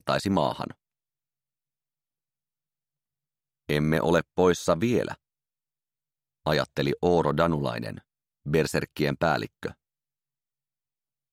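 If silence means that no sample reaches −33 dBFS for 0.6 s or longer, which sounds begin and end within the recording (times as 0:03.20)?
0:03.69–0:05.14
0:06.46–0:09.71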